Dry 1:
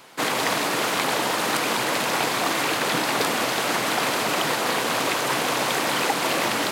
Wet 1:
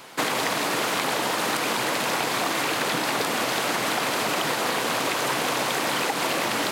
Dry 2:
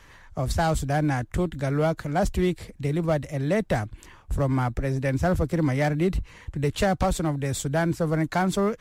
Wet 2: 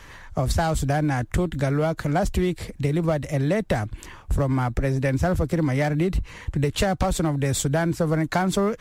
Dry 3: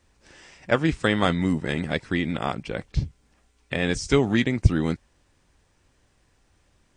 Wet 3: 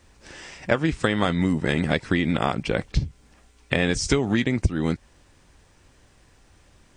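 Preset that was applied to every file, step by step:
downward compressor 12 to 1, threshold −25 dBFS
loudness normalisation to −24 LKFS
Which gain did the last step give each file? +4.0, +7.0, +8.0 decibels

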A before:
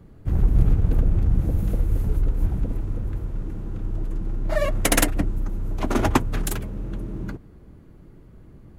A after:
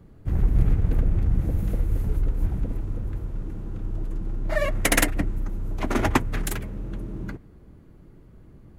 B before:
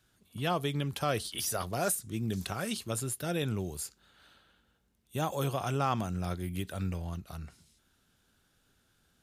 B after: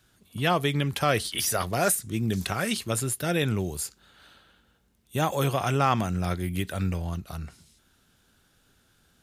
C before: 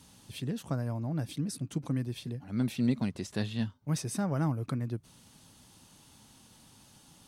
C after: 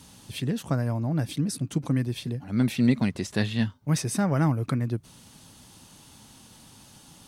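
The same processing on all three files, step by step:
dynamic equaliser 2,000 Hz, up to +6 dB, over −53 dBFS, Q 2.1
loudness normalisation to −27 LKFS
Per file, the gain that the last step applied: −2.0, +6.5, +6.5 decibels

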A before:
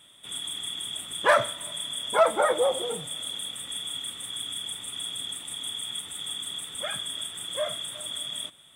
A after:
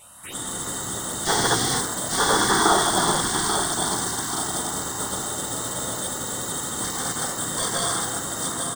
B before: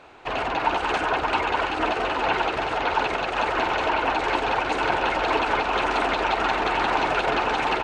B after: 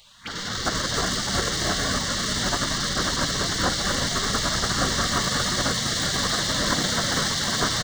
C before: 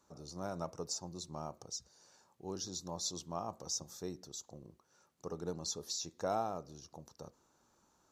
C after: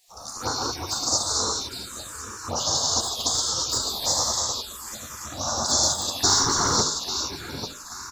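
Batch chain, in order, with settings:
dynamic equaliser 2,600 Hz, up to −6 dB, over −43 dBFS, Q 1.8
tape wow and flutter 15 cents
on a send: repeating echo 838 ms, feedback 38%, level −8 dB
on the sum: reverb whose tail is shaped and stops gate 460 ms flat, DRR −6 dB
in parallel at −3.5 dB: wave folding −25 dBFS
on the sum: gate on every frequency bin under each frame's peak −15 dB weak
phaser swept by the level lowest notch 250 Hz, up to 2,500 Hz, full sweep at −37.5 dBFS
hum removal 50.56 Hz, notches 13
loudness normalisation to −23 LKFS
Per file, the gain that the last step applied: +9.5, +8.0, +17.0 decibels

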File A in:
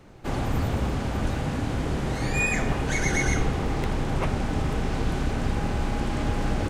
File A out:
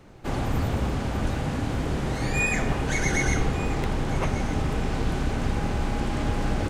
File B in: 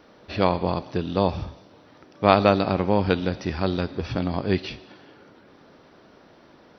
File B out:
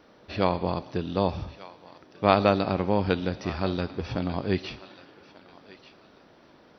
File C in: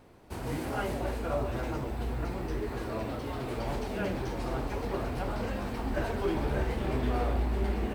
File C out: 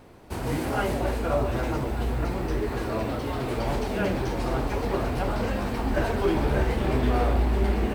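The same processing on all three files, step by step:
feedback echo with a high-pass in the loop 1,190 ms, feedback 29%, high-pass 1,100 Hz, level −15 dB
loudness normalisation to −27 LKFS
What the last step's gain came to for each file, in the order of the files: 0.0, −3.5, +6.5 decibels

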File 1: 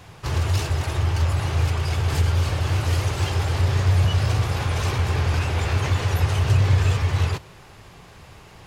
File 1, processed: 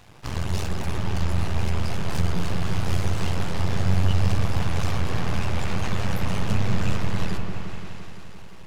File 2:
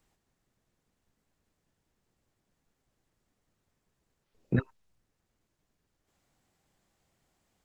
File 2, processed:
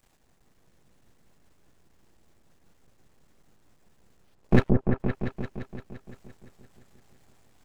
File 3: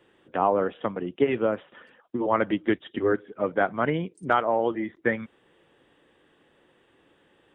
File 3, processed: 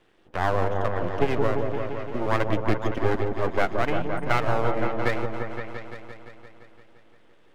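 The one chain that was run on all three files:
half-wave rectification
echo whose low-pass opens from repeat to repeat 172 ms, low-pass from 750 Hz, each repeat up 1 octave, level −3 dB
loudness normalisation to −27 LKFS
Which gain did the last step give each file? −1.5, +13.0, +2.5 decibels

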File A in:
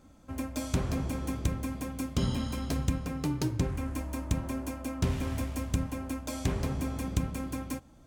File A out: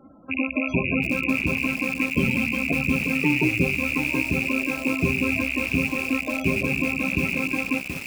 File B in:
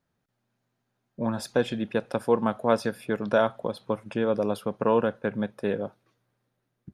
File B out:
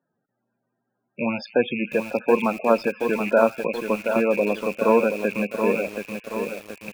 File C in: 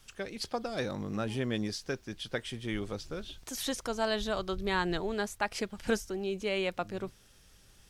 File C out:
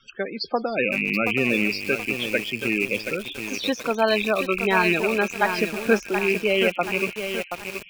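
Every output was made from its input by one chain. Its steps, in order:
loose part that buzzes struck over −37 dBFS, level −20 dBFS
three-way crossover with the lows and the highs turned down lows −16 dB, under 160 Hz, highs −19 dB, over 7,100 Hz
delay with a high-pass on its return 157 ms, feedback 82%, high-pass 2,000 Hz, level −16 dB
spectral peaks only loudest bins 32
feedback echo at a low word length 727 ms, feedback 55%, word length 7 bits, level −6.5 dB
loudness normalisation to −23 LKFS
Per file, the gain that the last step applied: +10.5, +4.5, +11.0 decibels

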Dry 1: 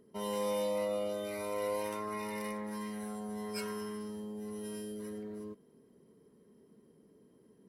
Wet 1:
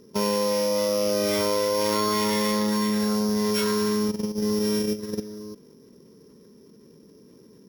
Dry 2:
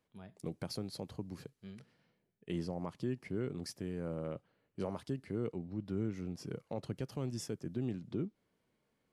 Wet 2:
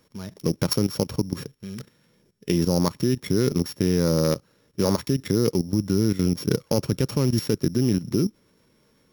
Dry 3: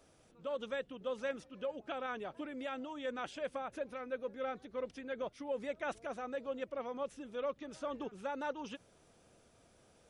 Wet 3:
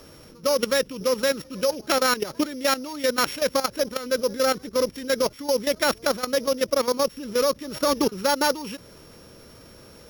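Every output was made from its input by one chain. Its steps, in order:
samples sorted by size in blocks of 8 samples
parametric band 720 Hz −14 dB 0.22 octaves
output level in coarse steps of 14 dB
loudness normalisation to −24 LKFS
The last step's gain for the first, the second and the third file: +18.5, +22.0, +22.5 decibels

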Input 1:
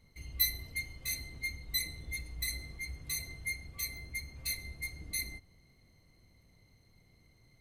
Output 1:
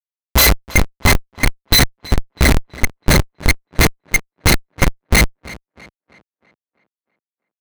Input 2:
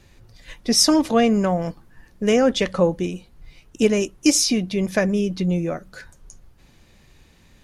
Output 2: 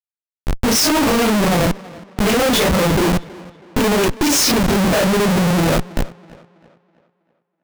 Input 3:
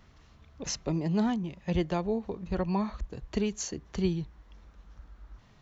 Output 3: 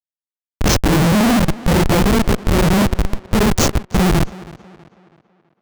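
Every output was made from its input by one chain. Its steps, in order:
random phases in long frames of 100 ms
comparator with hysteresis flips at −31.5 dBFS
tape delay 325 ms, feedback 45%, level −18 dB, low-pass 4,300 Hz
loudness normalisation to −16 LKFS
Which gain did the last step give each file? +31.0, +7.0, +20.5 decibels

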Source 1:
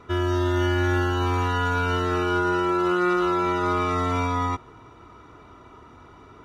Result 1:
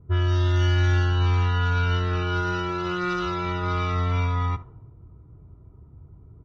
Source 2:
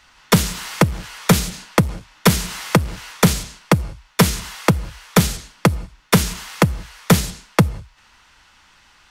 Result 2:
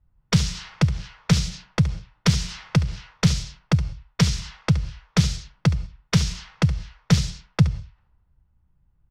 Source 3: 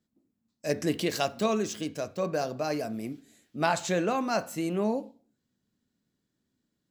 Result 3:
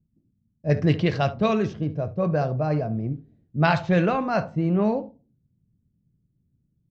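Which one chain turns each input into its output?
dynamic equaliser 930 Hz, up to −3 dB, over −32 dBFS, Q 1.6
single-tap delay 72 ms −16 dB
low-pass that shuts in the quiet parts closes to 300 Hz, open at −16.5 dBFS
drawn EQ curve 150 Hz 0 dB, 240 Hz −15 dB, 1,600 Hz −9 dB, 5,500 Hz −1 dB, 12,000 Hz −24 dB
loudness normalisation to −24 LKFS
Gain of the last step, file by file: +7.0, 0.0, +17.5 decibels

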